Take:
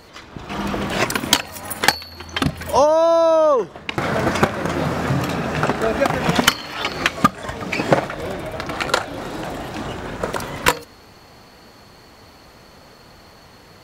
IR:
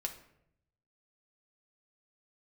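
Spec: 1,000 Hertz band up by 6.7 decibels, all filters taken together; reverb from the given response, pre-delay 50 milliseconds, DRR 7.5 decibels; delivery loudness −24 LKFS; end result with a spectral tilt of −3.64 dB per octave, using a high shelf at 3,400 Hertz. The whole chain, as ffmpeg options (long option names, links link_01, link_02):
-filter_complex "[0:a]equalizer=frequency=1000:width_type=o:gain=8,highshelf=frequency=3400:gain=3,asplit=2[link_01][link_02];[1:a]atrim=start_sample=2205,adelay=50[link_03];[link_02][link_03]afir=irnorm=-1:irlink=0,volume=-7.5dB[link_04];[link_01][link_04]amix=inputs=2:normalize=0,volume=-8dB"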